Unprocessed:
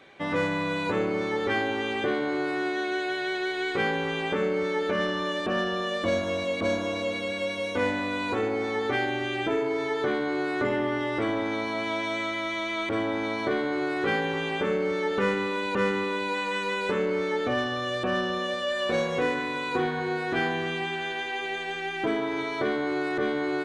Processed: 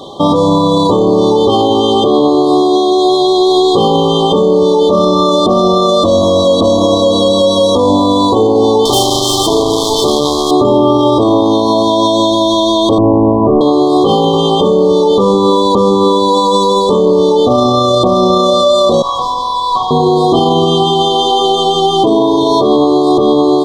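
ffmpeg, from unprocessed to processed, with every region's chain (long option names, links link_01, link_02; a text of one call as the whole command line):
ffmpeg -i in.wav -filter_complex "[0:a]asettb=1/sr,asplit=3[link_01][link_02][link_03];[link_01]atrim=end=8.854[link_04];[link_02]atrim=start=8.85:end=10.51,asetpts=PTS-STARTPTS,afade=type=in:duration=0.004:curve=qsin,afade=type=out:start_time=1.656:duration=0.004:curve=qsin,highshelf=frequency=2800:gain=11,acrusher=bits=3:mix=0:aa=0.5[link_05];[link_03]atrim=start=10.506[link_06];[link_04][link_05]acrossfade=duration=0.004:curve1=hsin:curve2=qsin[link_07];[link_07][link_06]acrossfade=duration=0.004:curve1=qsin:curve2=hsin,asettb=1/sr,asplit=3[link_08][link_09][link_10];[link_08]atrim=end=12.984[link_11];[link_09]atrim=start=12.98:end=13.61,asetpts=PTS-STARTPTS,afade=type=in:duration=0.004:curve=qsin,afade=type=out:start_time=0.626:duration=0.004:curve=qsin,lowpass=frequency=1300:width=0.5412,lowpass=frequency=1300:width=1.3066,aemphasis=mode=reproduction:type=bsi[link_12];[link_10]atrim=start=13.606[link_13];[link_11][link_12]acrossfade=duration=0.004:curve1=hsin:curve2=qsin[link_14];[link_14][link_13]acrossfade=duration=0.004:curve1=qsin:curve2=hsin,asettb=1/sr,asplit=3[link_15][link_16][link_17];[link_15]atrim=end=19.024[link_18];[link_16]atrim=start=19.02:end=19.91,asetpts=PTS-STARTPTS,afade=type=in:duration=0.004:curve=qsin,afade=type=out:start_time=0.886:duration=0.004:curve=qsin,highpass=frequency=1100:width=0.5412,highpass=frequency=1100:width=1.3066,highshelf=frequency=2200:gain=-8.5,asplit=2[link_19][link_20];[link_20]highpass=frequency=720:poles=1,volume=14dB,asoftclip=type=tanh:threshold=-24dB[link_21];[link_19][link_21]amix=inputs=2:normalize=0,lowpass=frequency=1400:poles=1,volume=-6dB[link_22];[link_17]atrim=start=19.906[link_23];[link_18][link_22]acrossfade=duration=0.004:curve1=hsin:curve2=qsin[link_24];[link_24][link_23]acrossfade=duration=0.004:curve1=qsin:curve2=hsin,afftfilt=real='re*(1-between(b*sr/4096,1200,3100))':imag='im*(1-between(b*sr/4096,1200,3100))':win_size=4096:overlap=0.75,alimiter=level_in=26.5dB:limit=-1dB:release=50:level=0:latency=1,volume=-1dB" out.wav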